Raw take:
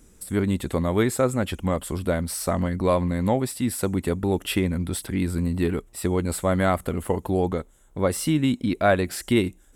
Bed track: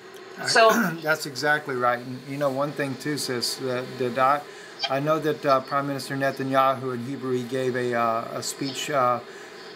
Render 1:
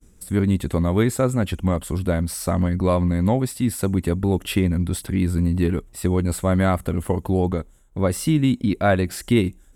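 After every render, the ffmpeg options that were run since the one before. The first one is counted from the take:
-af "bass=f=250:g=6,treble=f=4000:g=0,agate=range=0.0224:threshold=0.00631:ratio=3:detection=peak"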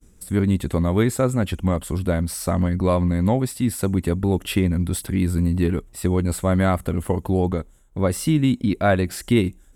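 -filter_complex "[0:a]asettb=1/sr,asplit=3[s0][s1][s2];[s0]atrim=end=4.784[s3];[s1]atrim=start=4.78:end=5.55,asetpts=PTS-STARTPTS,afade=t=in:d=0.004:c=qsin,afade=t=out:st=0.766:d=0.004:c=qsin,highshelf=f=9100:g=5[s4];[s2]atrim=start=5.546[s5];[s3][s4]acrossfade=d=0.004:c1=hsin:c2=qsin[s6];[s6][s5]acrossfade=d=0.004:c1=qsin:c2=hsin"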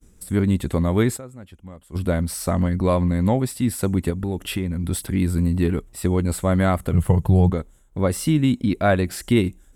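-filter_complex "[0:a]asettb=1/sr,asplit=3[s0][s1][s2];[s0]atrim=end=4.104[s3];[s1]atrim=start=4.1:end=4.84,asetpts=PTS-STARTPTS,afade=t=in:d=0.004:c=qsin,afade=t=out:st=0.736:d=0.004:c=qsin,acompressor=threshold=0.0631:ratio=2:attack=3.2:release=140:knee=1:detection=peak[s4];[s2]atrim=start=4.836[s5];[s3][s4]acrossfade=d=0.004:c1=hsin:c2=qsin[s6];[s6][s5]acrossfade=d=0.004:c1=qsin:c2=hsin,asettb=1/sr,asplit=3[s7][s8][s9];[s7]atrim=end=6.934[s10];[s8]atrim=start=6.93:end=7.5,asetpts=PTS-STARTPTS,afade=t=in:d=0.004:c=qsin,afade=t=out:st=0.566:d=0.004:c=qsin,lowshelf=f=190:t=q:w=3:g=6.5[s11];[s9]atrim=start=7.496[s12];[s10][s11]acrossfade=d=0.004:c1=hsin:c2=qsin[s13];[s13][s12]acrossfade=d=0.004:c1=qsin:c2=hsin,asplit=3[s14][s15][s16];[s14]atrim=end=1.31,asetpts=PTS-STARTPTS,afade=t=out:st=1.16:d=0.15:c=exp:silence=0.112202[s17];[s15]atrim=start=1.31:end=1.81,asetpts=PTS-STARTPTS,volume=0.112[s18];[s16]atrim=start=1.81,asetpts=PTS-STARTPTS,afade=t=in:d=0.15:c=exp:silence=0.112202[s19];[s17][s18][s19]concat=n=3:v=0:a=1"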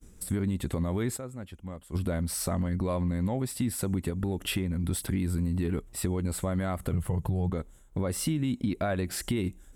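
-af "alimiter=limit=0.224:level=0:latency=1:release=70,acompressor=threshold=0.0398:ratio=2.5"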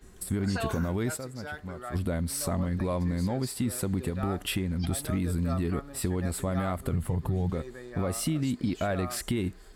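-filter_complex "[1:a]volume=0.126[s0];[0:a][s0]amix=inputs=2:normalize=0"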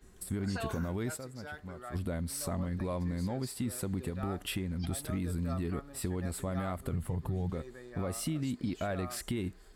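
-af "volume=0.531"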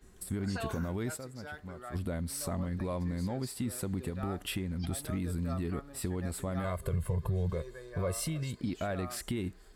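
-filter_complex "[0:a]asettb=1/sr,asplit=3[s0][s1][s2];[s0]atrim=end=6.644[s3];[s1]atrim=start=6.64:end=8.61,asetpts=PTS-STARTPTS,afade=t=in:d=0.004:c=qsin,afade=t=out:st=1.966:d=0.004:c=qsin,aecho=1:1:1.9:0.8,atrim=end_sample=86877[s4];[s2]atrim=start=8.606[s5];[s3][s4]acrossfade=d=0.004:c1=hsin:c2=qsin[s6];[s6][s5]acrossfade=d=0.004:c1=qsin:c2=hsin"

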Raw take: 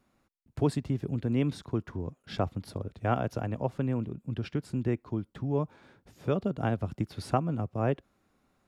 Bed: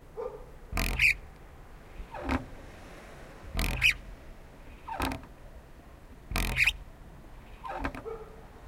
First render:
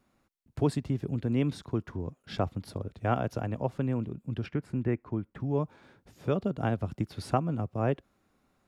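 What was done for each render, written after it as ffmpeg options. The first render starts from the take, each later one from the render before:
-filter_complex "[0:a]asettb=1/sr,asplit=3[s0][s1][s2];[s0]atrim=end=4.464[s3];[s1]atrim=start=4.46:end=5.4,asetpts=PTS-STARTPTS,afade=t=in:d=0.004:c=qsin,afade=t=out:st=0.936:d=0.004:c=qsin,highshelf=f=2900:t=q:w=1.5:g=-8.5[s4];[s2]atrim=start=5.396[s5];[s3][s4]acrossfade=d=0.004:c1=hsin:c2=qsin[s6];[s6][s5]acrossfade=d=0.004:c1=qsin:c2=hsin"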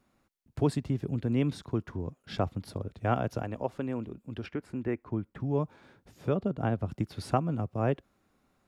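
-filter_complex "[0:a]asettb=1/sr,asplit=3[s0][s1][s2];[s0]atrim=end=3.424[s3];[s1]atrim=start=3.42:end=5.05,asetpts=PTS-STARTPTS,afade=t=in:d=0.004:c=qsin,afade=t=out:st=1.626:d=0.004:c=qsin,equalizer=f=140:w=1.5:g=-10[s4];[s2]atrim=start=5.046[s5];[s3][s4]acrossfade=d=0.004:c1=hsin:c2=qsin[s6];[s6][s5]acrossfade=d=0.004:c1=qsin:c2=hsin,asettb=1/sr,asplit=3[s7][s8][s9];[s7]atrim=end=6.294[s10];[s8]atrim=start=6.29:end=6.89,asetpts=PTS-STARTPTS,afade=t=in:d=0.004:c=qsin,afade=t=out:st=0.596:d=0.004:c=qsin,highshelf=f=2700:g=-7.5[s11];[s9]atrim=start=6.886[s12];[s10][s11]acrossfade=d=0.004:c1=hsin:c2=qsin[s13];[s13][s12]acrossfade=d=0.004:c1=qsin:c2=hsin"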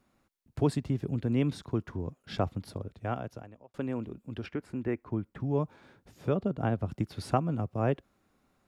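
-filter_complex "[0:a]asplit=2[s0][s1];[s0]atrim=end=3.74,asetpts=PTS-STARTPTS,afade=t=out:st=2.54:d=1.2[s2];[s1]atrim=start=3.74,asetpts=PTS-STARTPTS,afade=t=in:d=0.004:c=hsin[s3];[s2][s3]concat=n=2:v=0:a=1"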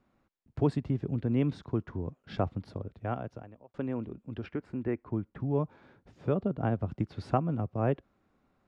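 -af "lowpass=8200,aemphasis=mode=reproduction:type=75kf"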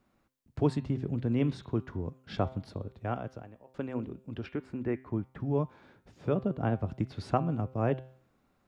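-af "highshelf=f=3700:g=7,bandreject=f=130:t=h:w=4,bandreject=f=260:t=h:w=4,bandreject=f=390:t=h:w=4,bandreject=f=520:t=h:w=4,bandreject=f=650:t=h:w=4,bandreject=f=780:t=h:w=4,bandreject=f=910:t=h:w=4,bandreject=f=1040:t=h:w=4,bandreject=f=1170:t=h:w=4,bandreject=f=1300:t=h:w=4,bandreject=f=1430:t=h:w=4,bandreject=f=1560:t=h:w=4,bandreject=f=1690:t=h:w=4,bandreject=f=1820:t=h:w=4,bandreject=f=1950:t=h:w=4,bandreject=f=2080:t=h:w=4,bandreject=f=2210:t=h:w=4,bandreject=f=2340:t=h:w=4,bandreject=f=2470:t=h:w=4,bandreject=f=2600:t=h:w=4,bandreject=f=2730:t=h:w=4,bandreject=f=2860:t=h:w=4,bandreject=f=2990:t=h:w=4,bandreject=f=3120:t=h:w=4,bandreject=f=3250:t=h:w=4,bandreject=f=3380:t=h:w=4,bandreject=f=3510:t=h:w=4,bandreject=f=3640:t=h:w=4,bandreject=f=3770:t=h:w=4,bandreject=f=3900:t=h:w=4,bandreject=f=4030:t=h:w=4,bandreject=f=4160:t=h:w=4,bandreject=f=4290:t=h:w=4"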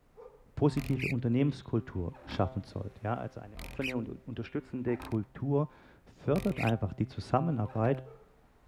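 -filter_complex "[1:a]volume=0.2[s0];[0:a][s0]amix=inputs=2:normalize=0"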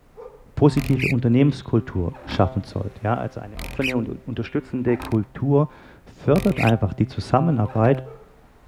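-af "volume=3.76,alimiter=limit=0.708:level=0:latency=1"

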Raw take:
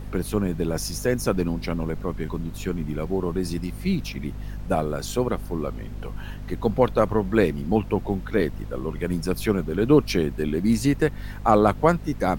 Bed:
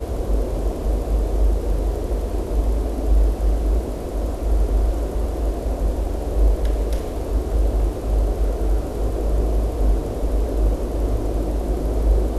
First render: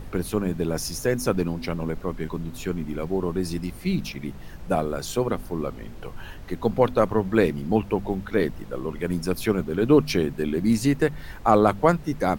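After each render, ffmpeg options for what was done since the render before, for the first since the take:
-af "bandreject=f=50:t=h:w=4,bandreject=f=100:t=h:w=4,bandreject=f=150:t=h:w=4,bandreject=f=200:t=h:w=4,bandreject=f=250:t=h:w=4"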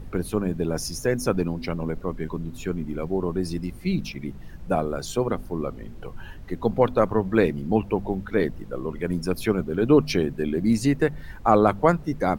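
-af "afftdn=nr=7:nf=-40"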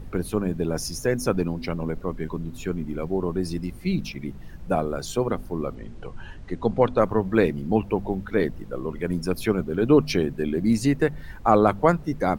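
-filter_complex "[0:a]asettb=1/sr,asplit=3[s0][s1][s2];[s0]atrim=end=5.754[s3];[s1]atrim=start=5.75:end=7,asetpts=PTS-STARTPTS,afade=t=in:d=0.004:c=qsin,afade=t=out:st=1.246:d=0.004:c=qsin,lowpass=f=9100:w=0.5412,lowpass=f=9100:w=1.3066[s4];[s2]atrim=start=6.996[s5];[s3][s4]acrossfade=d=0.004:c1=hsin:c2=qsin[s6];[s6][s5]acrossfade=d=0.004:c1=qsin:c2=hsin"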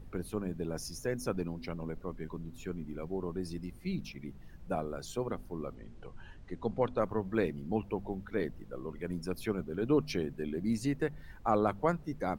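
-af "volume=0.282"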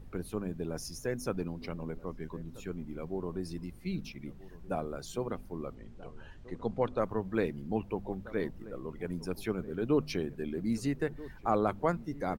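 -filter_complex "[0:a]asplit=2[s0][s1];[s1]adelay=1283,volume=0.126,highshelf=f=4000:g=-28.9[s2];[s0][s2]amix=inputs=2:normalize=0"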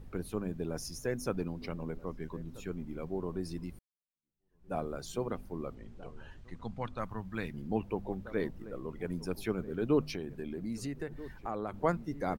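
-filter_complex "[0:a]asettb=1/sr,asplit=3[s0][s1][s2];[s0]atrim=end=6.414[s3];[s1]atrim=start=6.41:end=7.54,asetpts=PTS-STARTPTS,afade=t=in:d=0.004:c=qsin,afade=t=out:st=1.126:d=0.004:c=qsin,equalizer=f=430:t=o:w=1.5:g=-13[s4];[s2]atrim=start=7.536[s5];[s3][s4]acrossfade=d=0.004:c1=hsin:c2=qsin[s6];[s6][s5]acrossfade=d=0.004:c1=qsin:c2=hsin,asettb=1/sr,asplit=3[s7][s8][s9];[s7]atrim=end=10.034[s10];[s8]atrim=start=10.03:end=11.74,asetpts=PTS-STARTPTS,afade=t=in:d=0.004:c=qsin,afade=t=out:st=1.706:d=0.004:c=qsin,acompressor=threshold=0.0158:ratio=2.5:attack=3.2:release=140:knee=1:detection=peak[s11];[s9]atrim=start=11.736[s12];[s10][s11]acrossfade=d=0.004:c1=hsin:c2=qsin[s13];[s13][s12]acrossfade=d=0.004:c1=qsin:c2=hsin,asplit=2[s14][s15];[s14]atrim=end=3.79,asetpts=PTS-STARTPTS,afade=t=out:st=3.786:d=0.004:c=hsin[s16];[s15]atrim=start=3.79,asetpts=PTS-STARTPTS,afade=t=in:d=0.97:c=exp[s17];[s16][s17]concat=n=2:v=0:a=1"

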